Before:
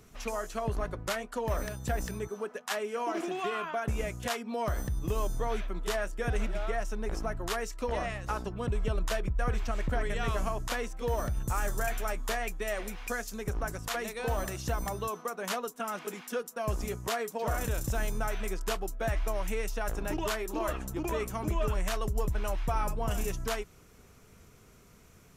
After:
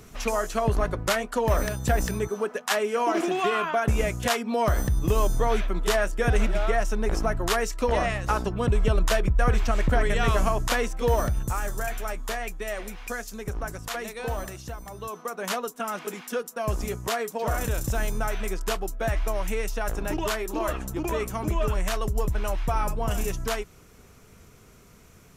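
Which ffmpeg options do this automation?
-af "volume=21dB,afade=t=out:st=11.12:d=0.48:silence=0.446684,afade=t=out:st=14.27:d=0.57:silence=0.334965,afade=t=in:st=14.84:d=0.59:silence=0.237137"

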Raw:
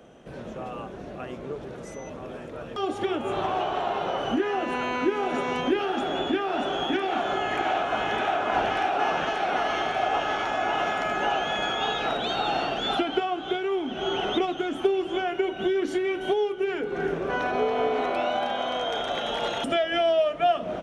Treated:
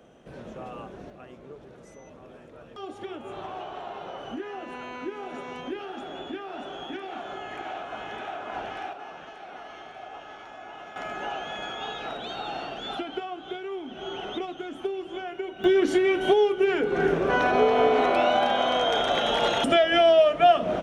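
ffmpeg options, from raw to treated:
-af "asetnsamples=n=441:p=0,asendcmd='1.1 volume volume -10dB;8.93 volume volume -16.5dB;10.96 volume volume -7.5dB;15.64 volume volume 4.5dB',volume=-3.5dB"

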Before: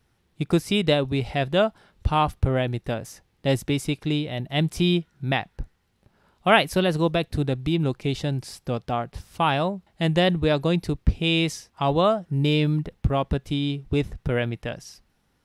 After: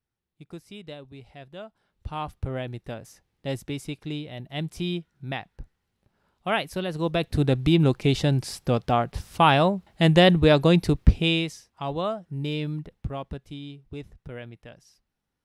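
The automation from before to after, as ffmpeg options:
-af "volume=4dB,afade=t=in:st=1.67:d=0.88:silence=0.251189,afade=t=in:st=6.93:d=0.65:silence=0.251189,afade=t=out:st=11.08:d=0.41:silence=0.251189,afade=t=out:st=12.76:d=1:silence=0.473151"

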